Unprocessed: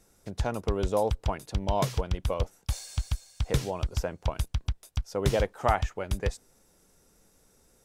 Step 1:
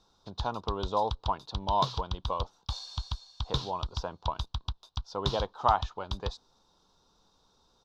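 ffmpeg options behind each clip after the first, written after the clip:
-af "firequalizer=gain_entry='entry(580,0);entry(990,14);entry(2000,-11);entry(3700,15);entry(8800,-19)':delay=0.05:min_phase=1,volume=-6dB"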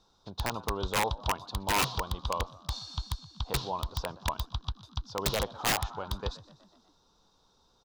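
-filter_complex "[0:a]asplit=6[a][b][c][d][e][f];[b]adelay=123,afreqshift=48,volume=-20dB[g];[c]adelay=246,afreqshift=96,volume=-24dB[h];[d]adelay=369,afreqshift=144,volume=-28dB[i];[e]adelay=492,afreqshift=192,volume=-32dB[j];[f]adelay=615,afreqshift=240,volume=-36.1dB[k];[a][g][h][i][j][k]amix=inputs=6:normalize=0,aeval=exprs='(mod(10*val(0)+1,2)-1)/10':c=same"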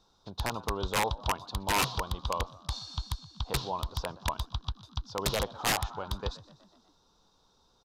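-af "aresample=32000,aresample=44100"

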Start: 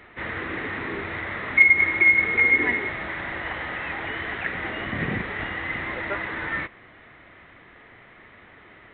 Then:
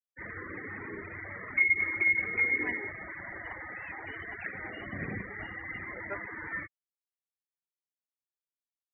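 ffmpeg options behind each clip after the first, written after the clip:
-af "flanger=delay=9.5:depth=1.1:regen=75:speed=1.1:shape=triangular,afftfilt=real='re*gte(hypot(re,im),0.0282)':imag='im*gte(hypot(re,im),0.0282)':win_size=1024:overlap=0.75,volume=-5dB"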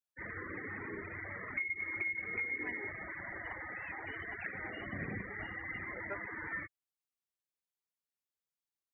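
-af "acompressor=threshold=-33dB:ratio=6,volume=-2dB"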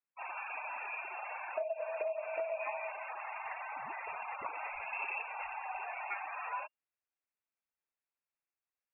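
-af "lowpass=f=2.4k:t=q:w=0.5098,lowpass=f=2.4k:t=q:w=0.6013,lowpass=f=2.4k:t=q:w=0.9,lowpass=f=2.4k:t=q:w=2.563,afreqshift=-2800,volume=1.5dB"

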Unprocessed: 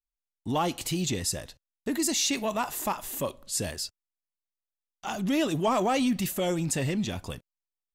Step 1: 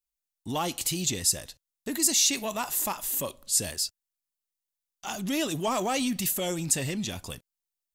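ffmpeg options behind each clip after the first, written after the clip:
-af "highshelf=f=3.6k:g=11.5,volume=-3.5dB"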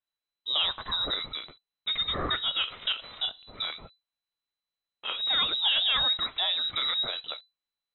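-af "lowpass=f=3.4k:t=q:w=0.5098,lowpass=f=3.4k:t=q:w=0.6013,lowpass=f=3.4k:t=q:w=0.9,lowpass=f=3.4k:t=q:w=2.563,afreqshift=-4000,lowshelf=f=120:g=9.5,volume=2.5dB"

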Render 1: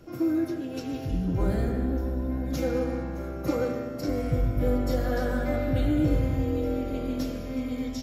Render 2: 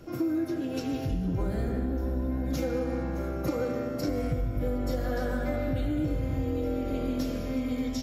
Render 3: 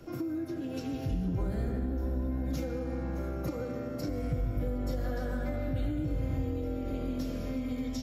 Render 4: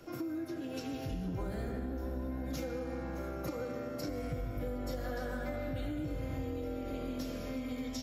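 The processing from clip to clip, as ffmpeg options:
-af "acompressor=threshold=-28dB:ratio=6,volume=2.5dB"
-filter_complex "[0:a]acrossover=split=210[a][b];[b]acompressor=threshold=-36dB:ratio=2.5[c];[a][c]amix=inputs=2:normalize=0,volume=-1.5dB"
-af "lowshelf=f=330:g=-9,volume=1dB"

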